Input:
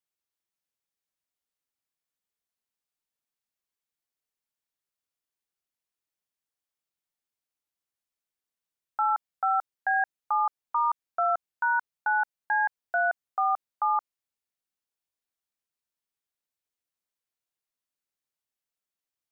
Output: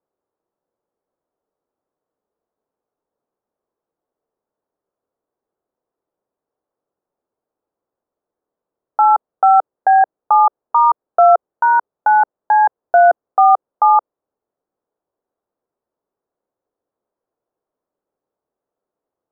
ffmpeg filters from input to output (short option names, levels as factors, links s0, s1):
-af "acontrast=84,lowpass=f=1300:w=0.5412,lowpass=f=1300:w=1.3066,equalizer=f=460:t=o:w=2:g=15,volume=1.12"